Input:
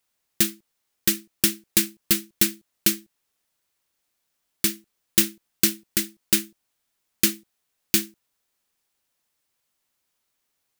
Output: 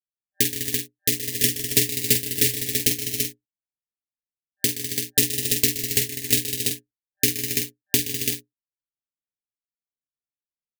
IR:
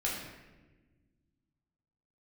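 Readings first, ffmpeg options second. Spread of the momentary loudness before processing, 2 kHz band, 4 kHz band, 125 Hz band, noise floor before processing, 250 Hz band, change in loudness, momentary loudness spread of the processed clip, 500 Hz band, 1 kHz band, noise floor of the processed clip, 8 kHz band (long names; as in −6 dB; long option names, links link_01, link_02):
5 LU, +1.5 dB, +2.5 dB, +7.0 dB, −77 dBFS, −2.0 dB, +1.0 dB, 6 LU, +5.0 dB, below −10 dB, below −85 dBFS, +2.5 dB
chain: -filter_complex "[0:a]anlmdn=15.8,afftfilt=real='re*(1-between(b*sr/4096,680,1700))':imag='im*(1-between(b*sr/4096,680,1700))':win_size=4096:overlap=0.75,highpass=frequency=150:poles=1,adynamicequalizer=threshold=0.00891:dfrequency=790:dqfactor=0.82:tfrequency=790:tqfactor=0.82:attack=5:release=100:ratio=0.375:range=1.5:mode=cutabove:tftype=bell,aeval=exprs='val(0)*sin(2*PI*87*n/s)':channel_layout=same,asplit=2[link_01][link_02];[link_02]adelay=47,volume=-7.5dB[link_03];[link_01][link_03]amix=inputs=2:normalize=0,asplit=2[link_04][link_05];[link_05]aecho=0:1:123|154|202|264|274|336:0.224|0.224|0.316|0.119|0.316|0.596[link_06];[link_04][link_06]amix=inputs=2:normalize=0,volume=2.5dB"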